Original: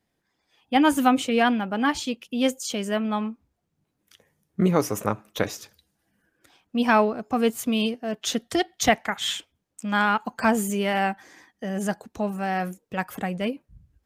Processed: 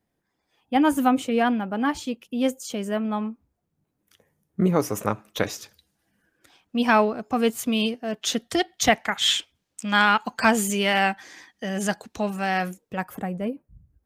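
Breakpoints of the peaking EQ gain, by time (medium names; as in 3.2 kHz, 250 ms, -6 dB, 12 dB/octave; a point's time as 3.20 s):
peaking EQ 3.9 kHz 2.6 oct
4.64 s -6 dB
5.08 s +2 dB
8.95 s +2 dB
9.38 s +8.5 dB
12.57 s +8.5 dB
12.96 s -3 dB
13.40 s -14 dB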